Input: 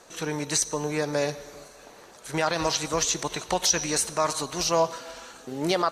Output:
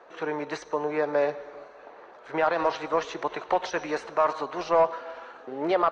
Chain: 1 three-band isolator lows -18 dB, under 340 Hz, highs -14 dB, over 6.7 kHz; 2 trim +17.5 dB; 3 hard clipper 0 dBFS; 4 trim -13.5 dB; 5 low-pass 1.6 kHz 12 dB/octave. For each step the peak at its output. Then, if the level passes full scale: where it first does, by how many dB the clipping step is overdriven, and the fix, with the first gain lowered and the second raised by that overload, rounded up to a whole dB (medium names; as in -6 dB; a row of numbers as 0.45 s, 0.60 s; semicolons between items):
-11.5 dBFS, +6.0 dBFS, 0.0 dBFS, -13.5 dBFS, -13.0 dBFS; step 2, 6.0 dB; step 2 +11.5 dB, step 4 -7.5 dB